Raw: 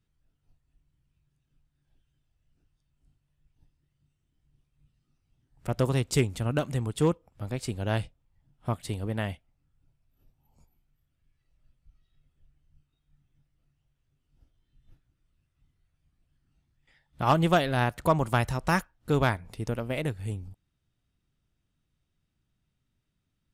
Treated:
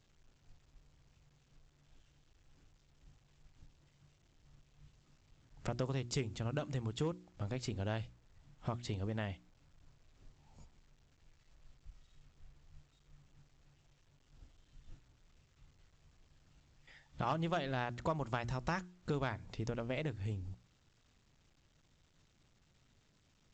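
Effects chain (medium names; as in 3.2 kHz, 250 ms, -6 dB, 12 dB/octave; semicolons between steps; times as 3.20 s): hum notches 60/120/180/240/300/360 Hz; compression 3:1, threshold -43 dBFS, peak gain reduction 18.5 dB; trim +4 dB; A-law 128 kbps 16 kHz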